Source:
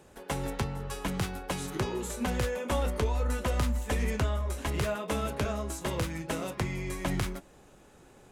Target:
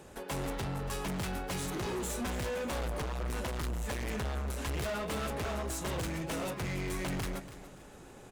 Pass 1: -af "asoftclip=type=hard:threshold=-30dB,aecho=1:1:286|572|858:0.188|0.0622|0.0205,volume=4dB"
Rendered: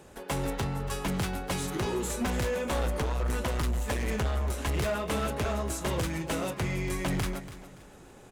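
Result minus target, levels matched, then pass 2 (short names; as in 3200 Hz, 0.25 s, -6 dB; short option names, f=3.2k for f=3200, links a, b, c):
hard clip: distortion -5 dB
-af "asoftclip=type=hard:threshold=-37.5dB,aecho=1:1:286|572|858:0.188|0.0622|0.0205,volume=4dB"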